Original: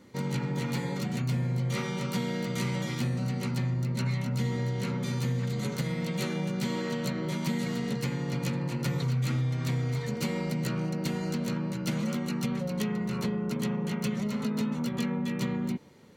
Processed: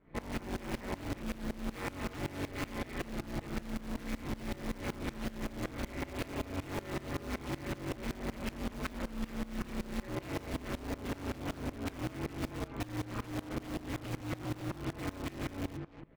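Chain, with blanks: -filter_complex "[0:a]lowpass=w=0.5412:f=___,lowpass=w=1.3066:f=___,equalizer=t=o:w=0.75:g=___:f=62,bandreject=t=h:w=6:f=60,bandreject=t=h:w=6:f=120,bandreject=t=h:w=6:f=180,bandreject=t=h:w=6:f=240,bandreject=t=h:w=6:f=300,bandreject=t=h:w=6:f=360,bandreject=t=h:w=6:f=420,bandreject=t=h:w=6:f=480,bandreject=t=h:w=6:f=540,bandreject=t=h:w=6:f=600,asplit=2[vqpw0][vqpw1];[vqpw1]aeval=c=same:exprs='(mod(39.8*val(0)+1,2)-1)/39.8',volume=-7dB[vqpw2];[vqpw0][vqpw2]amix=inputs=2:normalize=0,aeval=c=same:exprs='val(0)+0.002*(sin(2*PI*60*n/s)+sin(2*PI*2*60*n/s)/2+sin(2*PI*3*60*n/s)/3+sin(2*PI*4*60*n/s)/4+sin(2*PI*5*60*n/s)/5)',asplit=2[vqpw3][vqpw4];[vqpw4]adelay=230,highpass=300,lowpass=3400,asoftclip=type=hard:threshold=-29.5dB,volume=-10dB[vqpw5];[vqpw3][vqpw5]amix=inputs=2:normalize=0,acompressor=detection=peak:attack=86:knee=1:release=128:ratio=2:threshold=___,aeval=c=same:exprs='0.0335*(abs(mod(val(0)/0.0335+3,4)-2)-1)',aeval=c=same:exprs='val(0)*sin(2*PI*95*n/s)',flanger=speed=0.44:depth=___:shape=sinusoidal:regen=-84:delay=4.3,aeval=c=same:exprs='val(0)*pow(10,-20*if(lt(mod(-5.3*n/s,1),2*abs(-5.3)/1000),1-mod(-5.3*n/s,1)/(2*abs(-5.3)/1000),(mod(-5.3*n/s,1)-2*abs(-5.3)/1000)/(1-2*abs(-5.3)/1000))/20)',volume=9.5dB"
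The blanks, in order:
2500, 2500, -14.5, -34dB, 1.7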